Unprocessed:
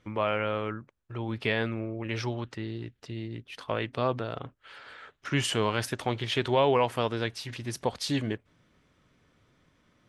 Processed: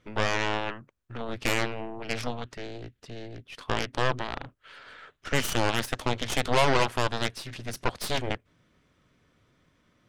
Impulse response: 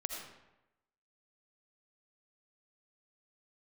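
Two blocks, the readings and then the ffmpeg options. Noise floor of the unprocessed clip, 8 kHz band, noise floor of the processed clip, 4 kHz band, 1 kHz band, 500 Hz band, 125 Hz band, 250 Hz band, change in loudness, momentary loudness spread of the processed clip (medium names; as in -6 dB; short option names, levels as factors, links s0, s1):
-69 dBFS, +4.0 dB, -69 dBFS, +2.5 dB, +2.0 dB, -1.5 dB, -1.0 dB, -2.0 dB, +1.0 dB, 18 LU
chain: -af "bandreject=f=840:w=15,aeval=exprs='0.251*(cos(1*acos(clip(val(0)/0.251,-1,1)))-cos(1*PI/2))+0.0708*(cos(7*acos(clip(val(0)/0.251,-1,1)))-cos(7*PI/2))+0.0447*(cos(8*acos(clip(val(0)/0.251,-1,1)))-cos(8*PI/2))':c=same"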